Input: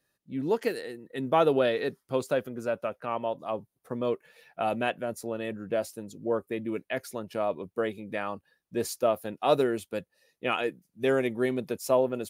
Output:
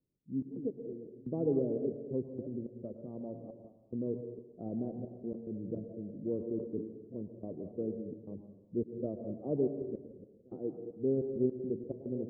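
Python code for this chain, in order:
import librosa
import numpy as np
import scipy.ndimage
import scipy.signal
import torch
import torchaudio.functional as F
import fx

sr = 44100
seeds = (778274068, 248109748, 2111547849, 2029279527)

y = fx.reverse_delay(x, sr, ms=133, wet_db=-10.5)
y = scipy.signal.sosfilt(scipy.signal.cheby2(4, 80, 2300.0, 'lowpass', fs=sr, output='sos'), y)
y = fx.step_gate(y, sr, bpm=107, pattern='xxx.x.xx.xx', floor_db=-24.0, edge_ms=4.5)
y = fx.rev_plate(y, sr, seeds[0], rt60_s=1.1, hf_ratio=0.75, predelay_ms=95, drr_db=7.0)
y = fx.sustainer(y, sr, db_per_s=86.0, at=(5.11, 7.2), fade=0.02)
y = y * 10.0 ** (-1.5 / 20.0)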